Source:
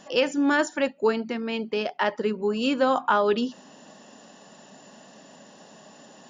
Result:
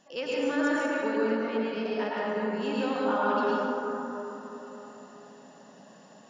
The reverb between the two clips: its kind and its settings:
dense smooth reverb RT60 3.8 s, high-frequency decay 0.3×, pre-delay 90 ms, DRR −7.5 dB
level −12.5 dB

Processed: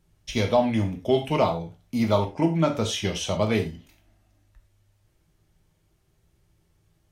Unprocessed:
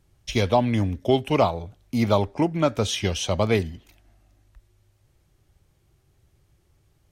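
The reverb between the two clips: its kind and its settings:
reverb whose tail is shaped and stops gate 130 ms falling, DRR 3 dB
level −3.5 dB

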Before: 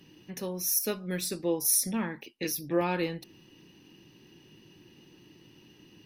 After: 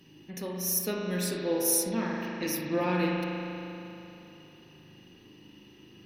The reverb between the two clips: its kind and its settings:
spring reverb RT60 3.1 s, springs 39 ms, chirp 20 ms, DRR −2 dB
level −1.5 dB

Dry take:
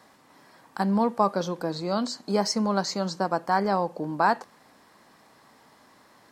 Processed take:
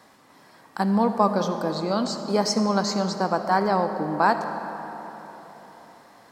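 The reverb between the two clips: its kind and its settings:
comb and all-pass reverb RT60 4.1 s, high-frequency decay 0.55×, pre-delay 30 ms, DRR 7.5 dB
level +2 dB

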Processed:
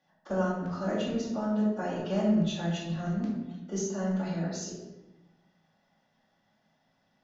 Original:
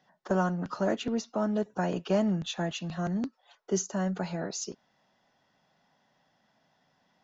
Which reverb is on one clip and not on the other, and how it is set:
rectangular room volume 440 cubic metres, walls mixed, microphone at 2.4 metres
level −8.5 dB

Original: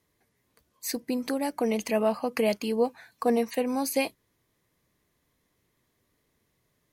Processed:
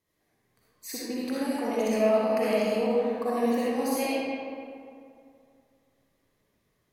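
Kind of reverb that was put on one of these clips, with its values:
comb and all-pass reverb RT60 2.4 s, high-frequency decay 0.55×, pre-delay 20 ms, DRR −9 dB
level −8.5 dB

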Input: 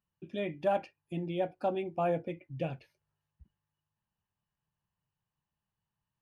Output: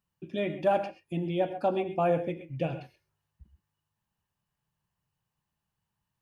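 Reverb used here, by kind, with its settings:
reverb whose tail is shaped and stops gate 150 ms rising, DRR 10 dB
level +4 dB

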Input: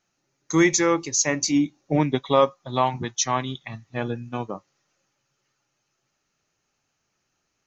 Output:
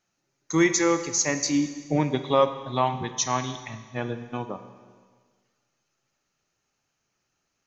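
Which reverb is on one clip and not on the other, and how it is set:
four-comb reverb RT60 1.6 s, combs from 32 ms, DRR 9.5 dB
level −2.5 dB

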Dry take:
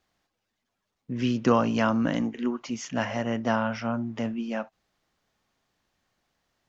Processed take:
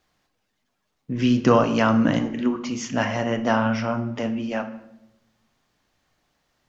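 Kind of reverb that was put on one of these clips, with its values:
rectangular room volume 240 cubic metres, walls mixed, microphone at 0.43 metres
level +4.5 dB

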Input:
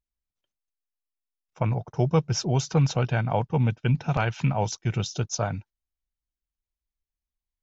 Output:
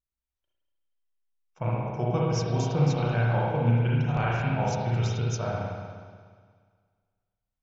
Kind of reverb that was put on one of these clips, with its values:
spring reverb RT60 1.8 s, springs 34/60 ms, chirp 50 ms, DRR −6 dB
level −7.5 dB

